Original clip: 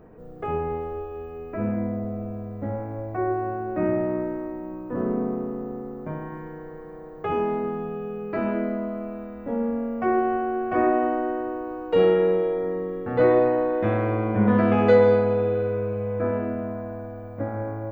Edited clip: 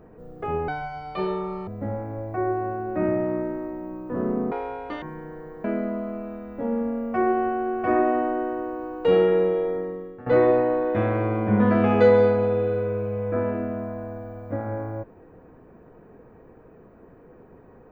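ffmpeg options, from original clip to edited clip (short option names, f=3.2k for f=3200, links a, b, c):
-filter_complex "[0:a]asplit=7[a][b][c][d][e][f][g];[a]atrim=end=0.684[h];[b]atrim=start=0.68:end=2.48,asetpts=PTS-STARTPTS,asetrate=79821,aresample=44100,atrim=end_sample=43856,asetpts=PTS-STARTPTS[i];[c]atrim=start=2.476:end=5.324[j];[d]atrim=start=5.32:end=6.3,asetpts=PTS-STARTPTS,asetrate=85113,aresample=44100[k];[e]atrim=start=6.296:end=6.922[l];[f]atrim=start=8.518:end=13.14,asetpts=PTS-STARTPTS,afade=t=out:st=4.042:d=0.58:silence=0.16788[m];[g]atrim=start=13.14,asetpts=PTS-STARTPTS,afade=t=in:d=0.004:c=hsin:silence=0.16788[n];[h][i]acrossfade=d=0.004:c1=hsin:c2=hsin[o];[o][j]acrossfade=d=0.004:c1=hsin:c2=hsin[p];[p][k]acrossfade=d=0.004:c1=hsin:c2=hsin[q];[q][l]acrossfade=d=0.004:c1=hsin:c2=hsin[r];[m][n]concat=n=2:v=0:a=1[s];[r][s]acrossfade=d=0.004:c1=hsin:c2=hsin"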